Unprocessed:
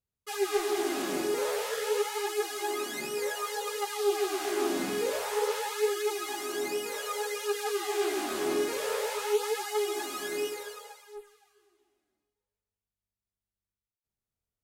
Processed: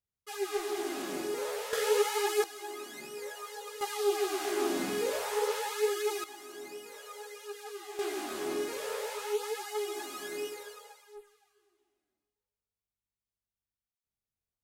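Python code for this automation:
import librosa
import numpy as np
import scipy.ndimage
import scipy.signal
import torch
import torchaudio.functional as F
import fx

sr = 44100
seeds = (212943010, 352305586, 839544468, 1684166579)

y = fx.gain(x, sr, db=fx.steps((0.0, -5.0), (1.73, 2.0), (2.44, -9.0), (3.81, -1.5), (6.24, -12.0), (7.99, -5.0)))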